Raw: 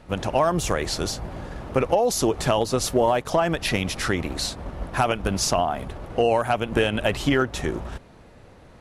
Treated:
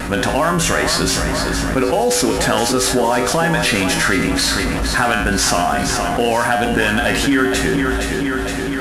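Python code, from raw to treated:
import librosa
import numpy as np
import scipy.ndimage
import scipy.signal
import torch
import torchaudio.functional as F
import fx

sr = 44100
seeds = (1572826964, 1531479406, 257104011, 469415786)

y = fx.cvsd(x, sr, bps=64000)
y = fx.tilt_shelf(y, sr, db=-3.0, hz=1500.0)
y = fx.comb_fb(y, sr, f0_hz=55.0, decay_s=0.58, harmonics='odd', damping=0.0, mix_pct=80)
y = fx.vibrato(y, sr, rate_hz=0.82, depth_cents=11.0)
y = fx.graphic_eq_15(y, sr, hz=(250, 1600, 10000), db=(9, 9, 4))
y = fx.echo_feedback(y, sr, ms=467, feedback_pct=46, wet_db=-11.0)
y = fx.env_flatten(y, sr, amount_pct=70)
y = y * 10.0 ** (9.0 / 20.0)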